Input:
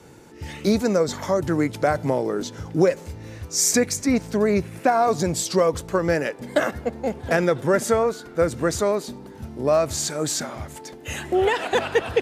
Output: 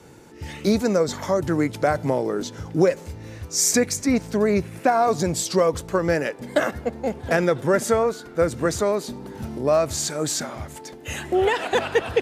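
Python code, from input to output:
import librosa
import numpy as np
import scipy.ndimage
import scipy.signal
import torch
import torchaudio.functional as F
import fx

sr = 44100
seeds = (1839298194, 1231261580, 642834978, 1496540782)

y = fx.band_squash(x, sr, depth_pct=40, at=(8.65, 9.59))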